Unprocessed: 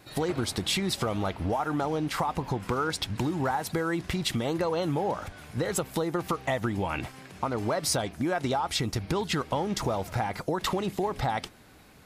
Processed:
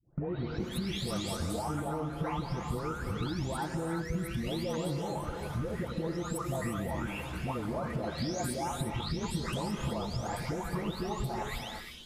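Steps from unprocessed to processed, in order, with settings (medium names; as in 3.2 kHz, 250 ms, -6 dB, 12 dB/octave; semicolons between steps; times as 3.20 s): delay that grows with frequency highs late, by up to 597 ms; gate with hold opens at -36 dBFS; bass shelf 240 Hz +10 dB; compression 5:1, threshold -34 dBFS, peak gain reduction 13 dB; gated-style reverb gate 380 ms rising, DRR 3.5 dB; trim +1 dB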